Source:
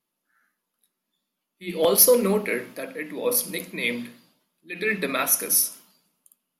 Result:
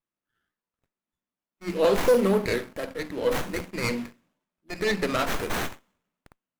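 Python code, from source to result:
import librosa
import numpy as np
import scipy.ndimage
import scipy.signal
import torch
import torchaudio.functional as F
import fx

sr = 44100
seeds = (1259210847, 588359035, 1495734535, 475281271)

y = fx.leveller(x, sr, passes=2)
y = fx.running_max(y, sr, window=9)
y = F.gain(torch.from_numpy(y), -6.5).numpy()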